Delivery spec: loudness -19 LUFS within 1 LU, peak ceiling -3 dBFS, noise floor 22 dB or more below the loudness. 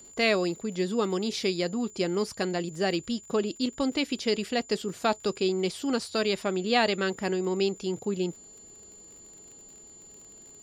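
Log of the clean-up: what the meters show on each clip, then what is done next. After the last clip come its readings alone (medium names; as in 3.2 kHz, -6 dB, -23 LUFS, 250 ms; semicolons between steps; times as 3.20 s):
tick rate 46 per s; steady tone 7.1 kHz; tone level -48 dBFS; loudness -28.5 LUFS; peak level -10.5 dBFS; loudness target -19.0 LUFS
-> de-click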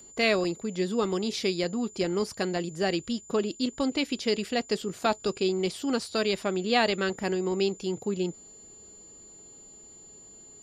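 tick rate 0.28 per s; steady tone 7.1 kHz; tone level -48 dBFS
-> band-stop 7.1 kHz, Q 30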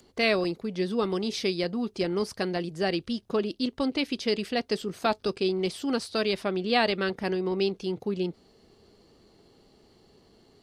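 steady tone not found; loudness -28.5 LUFS; peak level -10.5 dBFS; loudness target -19.0 LUFS
-> trim +9.5 dB; peak limiter -3 dBFS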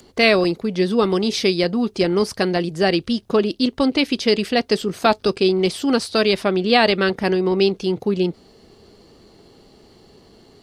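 loudness -19.0 LUFS; peak level -3.0 dBFS; noise floor -51 dBFS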